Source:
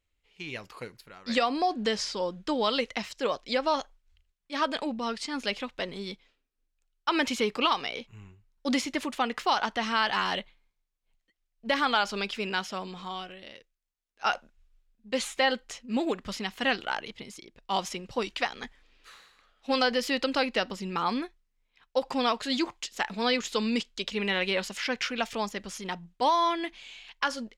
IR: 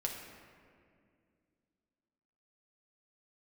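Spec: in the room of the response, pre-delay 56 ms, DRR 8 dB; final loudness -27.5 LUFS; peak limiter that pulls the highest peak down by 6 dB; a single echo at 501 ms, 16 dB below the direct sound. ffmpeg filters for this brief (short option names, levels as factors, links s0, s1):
-filter_complex "[0:a]alimiter=limit=0.126:level=0:latency=1,aecho=1:1:501:0.158,asplit=2[s0][s1];[1:a]atrim=start_sample=2205,adelay=56[s2];[s1][s2]afir=irnorm=-1:irlink=0,volume=0.316[s3];[s0][s3]amix=inputs=2:normalize=0,volume=1.41"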